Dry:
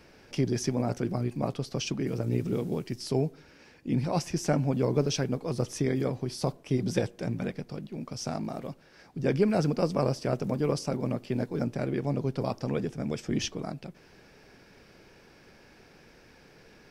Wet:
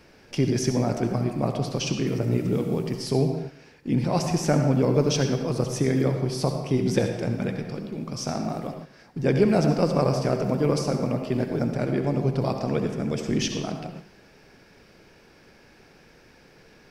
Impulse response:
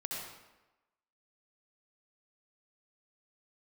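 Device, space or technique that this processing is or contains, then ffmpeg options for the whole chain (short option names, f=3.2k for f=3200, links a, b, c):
keyed gated reverb: -filter_complex "[0:a]asplit=3[a][b][c];[1:a]atrim=start_sample=2205[d];[b][d]afir=irnorm=-1:irlink=0[e];[c]apad=whole_len=745620[f];[e][f]sidechaingate=range=-9dB:threshold=-51dB:ratio=16:detection=peak,volume=-1dB[g];[a][g]amix=inputs=2:normalize=0"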